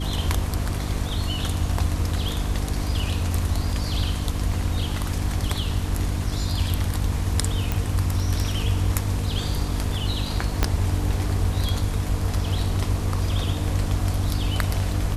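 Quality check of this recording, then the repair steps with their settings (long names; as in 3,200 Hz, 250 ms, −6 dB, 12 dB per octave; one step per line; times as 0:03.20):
mains hum 50 Hz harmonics 6 −28 dBFS
0:07.72: click
0:10.63: click −5 dBFS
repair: click removal
hum removal 50 Hz, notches 6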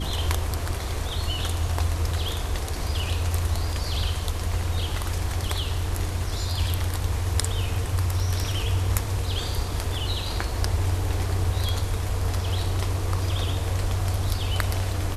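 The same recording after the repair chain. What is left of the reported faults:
0:10.63: click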